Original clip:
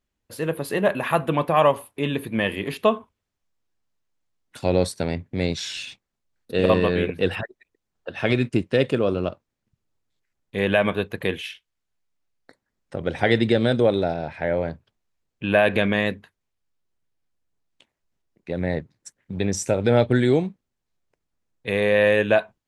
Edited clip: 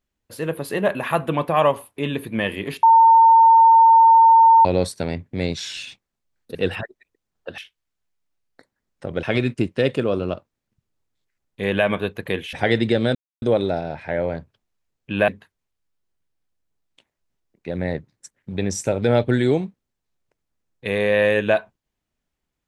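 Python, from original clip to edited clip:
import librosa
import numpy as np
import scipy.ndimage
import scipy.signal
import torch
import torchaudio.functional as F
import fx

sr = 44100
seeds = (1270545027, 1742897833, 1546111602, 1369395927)

y = fx.edit(x, sr, fx.bleep(start_s=2.83, length_s=1.82, hz=907.0, db=-8.0),
    fx.cut(start_s=6.55, length_s=0.6),
    fx.move(start_s=11.48, length_s=1.65, to_s=8.18),
    fx.insert_silence(at_s=13.75, length_s=0.27),
    fx.cut(start_s=15.61, length_s=0.49), tone=tone)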